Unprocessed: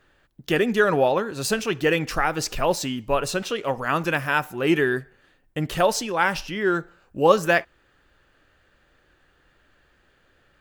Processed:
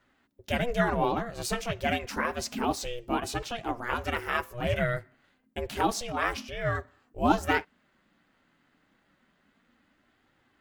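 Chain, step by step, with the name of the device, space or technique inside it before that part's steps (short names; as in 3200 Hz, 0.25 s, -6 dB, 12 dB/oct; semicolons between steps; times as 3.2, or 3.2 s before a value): alien voice (ring modulator 240 Hz; flange 0.29 Hz, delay 2.1 ms, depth 5.1 ms, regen -50%)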